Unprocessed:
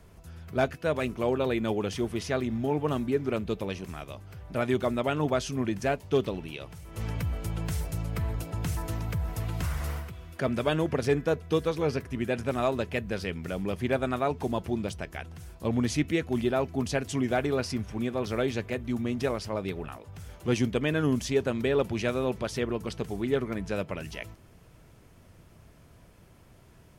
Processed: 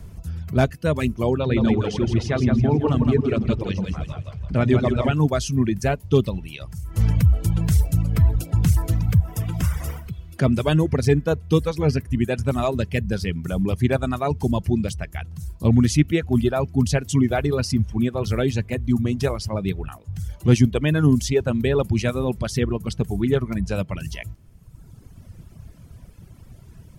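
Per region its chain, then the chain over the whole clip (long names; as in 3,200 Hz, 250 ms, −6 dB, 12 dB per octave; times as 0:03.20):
0:01.40–0:05.14: low-pass filter 4,800 Hz + echo with a time of its own for lows and highs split 450 Hz, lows 93 ms, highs 165 ms, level −3 dB
0:09.20–0:10.06: high-pass filter 110 Hz 6 dB per octave + notch filter 4,200 Hz, Q 5.2
whole clip: bass and treble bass +13 dB, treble +5 dB; reverb reduction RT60 1.6 s; level +4 dB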